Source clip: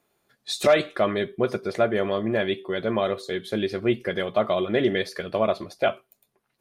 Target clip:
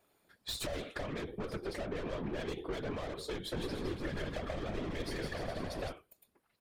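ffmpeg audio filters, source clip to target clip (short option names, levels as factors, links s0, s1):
-filter_complex "[0:a]bandreject=f=50:t=h:w=6,bandreject=f=100:t=h:w=6,alimiter=limit=0.188:level=0:latency=1:release=314,bandreject=f=6200:w=9,aeval=exprs='(tanh(39.8*val(0)+0.5)-tanh(0.5))/39.8':c=same,acrossover=split=270[s0][s1];[s1]acompressor=threshold=0.0158:ratio=6[s2];[s0][s2]amix=inputs=2:normalize=0,asplit=3[s3][s4][s5];[s3]afade=t=out:st=3.56:d=0.02[s6];[s4]aecho=1:1:160|296|411.6|509.9|593.4:0.631|0.398|0.251|0.158|0.1,afade=t=in:st=3.56:d=0.02,afade=t=out:st=5.91:d=0.02[s7];[s5]afade=t=in:st=5.91:d=0.02[s8];[s6][s7][s8]amix=inputs=3:normalize=0,acompressor=threshold=0.02:ratio=6,afftfilt=real='hypot(re,im)*cos(2*PI*random(0))':imag='hypot(re,im)*sin(2*PI*random(1))':win_size=512:overlap=0.75,volume=2.11"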